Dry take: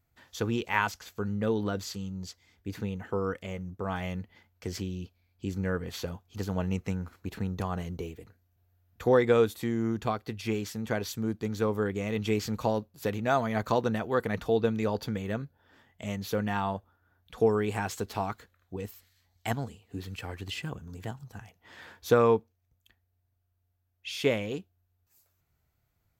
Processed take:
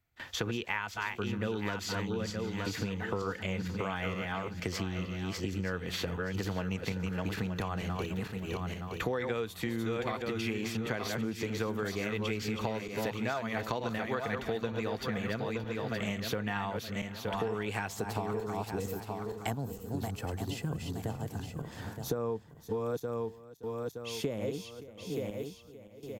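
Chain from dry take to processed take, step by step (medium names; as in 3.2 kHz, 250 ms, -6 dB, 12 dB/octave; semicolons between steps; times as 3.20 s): backward echo that repeats 460 ms, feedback 48%, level -6 dB; gate with hold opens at -47 dBFS; peaking EQ 2.4 kHz +7 dB 1.9 oct, from 17.88 s -4.5 dB, from 19.50 s -11.5 dB; compression 6:1, threshold -34 dBFS, peak gain reduction 16.5 dB; delay 572 ms -21 dB; three bands compressed up and down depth 40%; trim +3 dB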